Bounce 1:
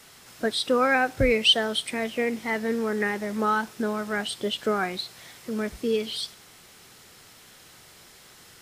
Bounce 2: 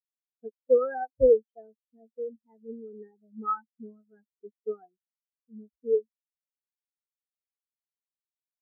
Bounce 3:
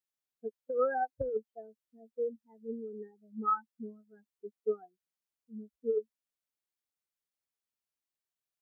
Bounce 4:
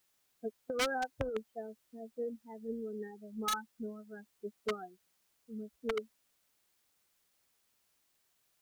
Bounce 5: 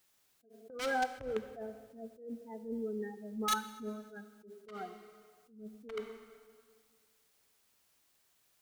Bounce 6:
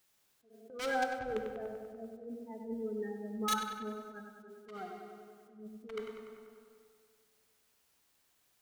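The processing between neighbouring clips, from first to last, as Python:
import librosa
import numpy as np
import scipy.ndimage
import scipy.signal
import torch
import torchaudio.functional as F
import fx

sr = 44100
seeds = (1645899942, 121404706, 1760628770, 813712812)

y1 = scipy.signal.sosfilt(scipy.signal.cheby2(4, 80, 8500.0, 'lowpass', fs=sr, output='sos'), x)
y1 = fx.spectral_expand(y1, sr, expansion=4.0)
y2 = fx.over_compress(y1, sr, threshold_db=-26.0, ratio=-1.0)
y2 = y2 * librosa.db_to_amplitude(-3.0)
y3 = 10.0 ** (-23.5 / 20.0) * (np.abs((y2 / 10.0 ** (-23.5 / 20.0) + 3.0) % 4.0 - 2.0) - 1.0)
y3 = fx.spectral_comp(y3, sr, ratio=2.0)
y3 = y3 * librosa.db_to_amplitude(5.5)
y4 = fx.rev_plate(y3, sr, seeds[0], rt60_s=1.9, hf_ratio=0.8, predelay_ms=0, drr_db=13.0)
y4 = fx.attack_slew(y4, sr, db_per_s=120.0)
y4 = y4 * librosa.db_to_amplitude(3.0)
y5 = fx.echo_filtered(y4, sr, ms=97, feedback_pct=71, hz=3400.0, wet_db=-6)
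y5 = y5 * librosa.db_to_amplitude(-1.0)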